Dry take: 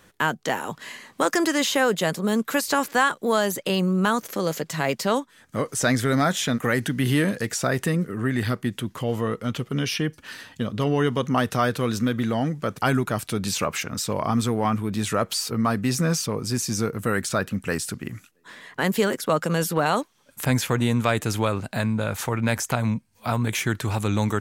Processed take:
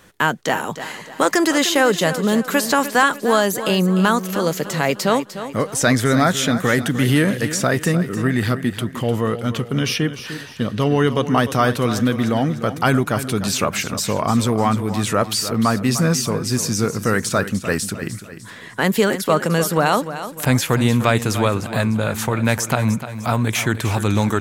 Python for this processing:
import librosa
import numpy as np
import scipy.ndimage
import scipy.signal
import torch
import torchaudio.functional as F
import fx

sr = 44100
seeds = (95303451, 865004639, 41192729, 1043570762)

y = fx.echo_feedback(x, sr, ms=301, feedback_pct=41, wet_db=-12.0)
y = y * 10.0 ** (5.0 / 20.0)